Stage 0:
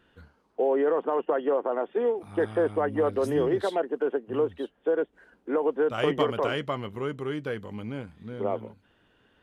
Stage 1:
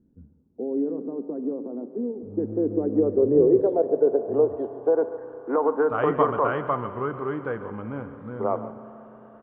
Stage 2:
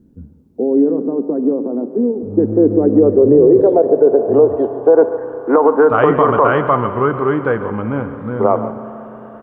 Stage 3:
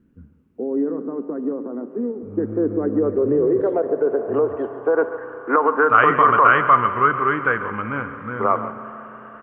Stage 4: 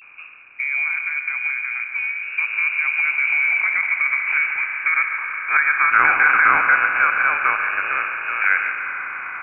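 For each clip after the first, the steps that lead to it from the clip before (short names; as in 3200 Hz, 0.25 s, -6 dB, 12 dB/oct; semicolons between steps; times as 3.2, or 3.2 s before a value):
echo 0.142 s -15 dB; on a send at -12 dB: reverb RT60 4.6 s, pre-delay 32 ms; on the sum: low-pass sweep 240 Hz -> 1200 Hz, 2.18–5.77; gain +1 dB
maximiser +14 dB; gain -1 dB
band shelf 1800 Hz +14 dB; gain -9 dB
per-bin compression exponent 0.6; vibrato 0.34 Hz 56 cents; inverted band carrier 2700 Hz; gain -4 dB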